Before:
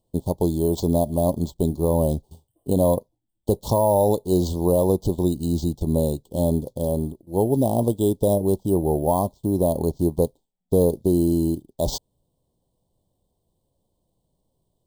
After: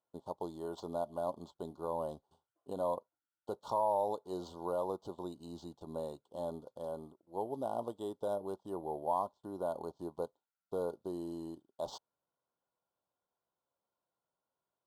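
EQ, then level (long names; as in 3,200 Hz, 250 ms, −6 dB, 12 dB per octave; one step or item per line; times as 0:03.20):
resonant band-pass 1,400 Hz, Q 17
+16.0 dB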